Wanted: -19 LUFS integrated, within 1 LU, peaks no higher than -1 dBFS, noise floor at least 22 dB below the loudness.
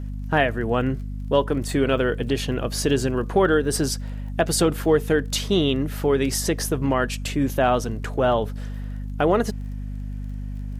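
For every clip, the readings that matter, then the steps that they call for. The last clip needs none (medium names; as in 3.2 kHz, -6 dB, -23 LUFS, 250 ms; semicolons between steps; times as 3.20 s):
tick rate 22 per s; hum 50 Hz; highest harmonic 250 Hz; hum level -28 dBFS; loudness -22.5 LUFS; peak level -6.5 dBFS; loudness target -19.0 LUFS
-> de-click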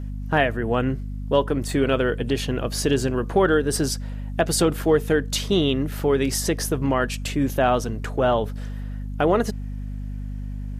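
tick rate 0 per s; hum 50 Hz; highest harmonic 250 Hz; hum level -28 dBFS
-> de-hum 50 Hz, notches 5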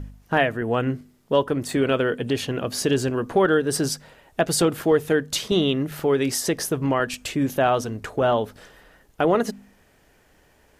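hum not found; loudness -23.0 LUFS; peak level -6.0 dBFS; loudness target -19.0 LUFS
-> trim +4 dB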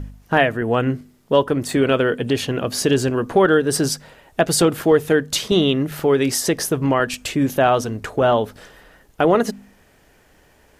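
loudness -19.0 LUFS; peak level -2.0 dBFS; noise floor -55 dBFS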